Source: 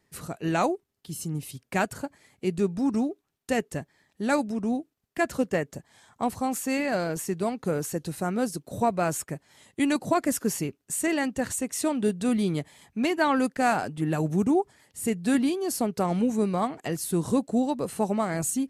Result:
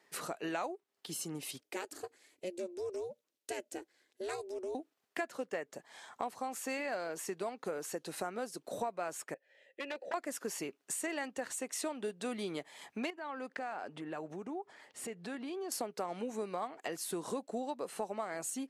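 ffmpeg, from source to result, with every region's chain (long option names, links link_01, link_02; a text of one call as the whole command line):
ffmpeg -i in.wav -filter_complex "[0:a]asettb=1/sr,asplit=3[link_01][link_02][link_03];[link_01]atrim=end=1.604[link_04];[link_02]atrim=start=1.6:end=4.75,asetpts=PTS-STARTPTS,afade=type=in:duration=0.004:curve=qsin,afade=type=out:start_time=3.146:duration=0.004:curve=qsin,equalizer=frequency=1000:width_type=o:width=2.8:gain=-14,aeval=exprs='val(0)*sin(2*PI*180*n/s)':channel_layout=same[link_05];[link_03]atrim=start=4.746[link_06];[link_04][link_05]acrossfade=duration=0.004:curve1=hsin:curve2=qsin[link_07];[link_07][link_06]acrossfade=duration=0.004:curve1=qsin:curve2=hsin,asettb=1/sr,asplit=3[link_08][link_09][link_10];[link_08]atrim=end=9.344[link_11];[link_09]atrim=start=9.34:end=10.14,asetpts=PTS-STARTPTS,afade=type=in:duration=0.004:curve=qsin,afade=type=out:start_time=0.796:duration=0.004:curve=qsin,asplit=3[link_12][link_13][link_14];[link_12]bandpass=frequency=530:width_type=q:width=8,volume=0dB[link_15];[link_13]bandpass=frequency=1840:width_type=q:width=8,volume=-6dB[link_16];[link_14]bandpass=frequency=2480:width_type=q:width=8,volume=-9dB[link_17];[link_15][link_16][link_17]amix=inputs=3:normalize=0,aeval=exprs='0.0188*(abs(mod(val(0)/0.0188+3,4)-2)-1)':channel_layout=same[link_18];[link_10]atrim=start=10.136[link_19];[link_11][link_18]acrossfade=duration=0.004:curve1=hsin:curve2=qsin[link_20];[link_20][link_19]acrossfade=duration=0.004:curve1=qsin:curve2=hsin,asettb=1/sr,asplit=3[link_21][link_22][link_23];[link_21]atrim=end=13.104[link_24];[link_22]atrim=start=13.1:end=15.72,asetpts=PTS-STARTPTS,afade=type=in:duration=0.004:curve=qsin,afade=type=out:start_time=2.616:duration=0.004:curve=qsin,aemphasis=mode=reproduction:type=50kf,acompressor=threshold=-38dB:ratio=4:attack=3.2:release=140:knee=1:detection=peak[link_25];[link_23]atrim=start=15.716[link_26];[link_24][link_25]acrossfade=duration=0.004:curve1=hsin:curve2=qsin[link_27];[link_27][link_26]acrossfade=duration=0.004:curve1=qsin:curve2=hsin,highpass=450,highshelf=frequency=7300:gain=-9.5,acompressor=threshold=-43dB:ratio=4,volume=5.5dB" out.wav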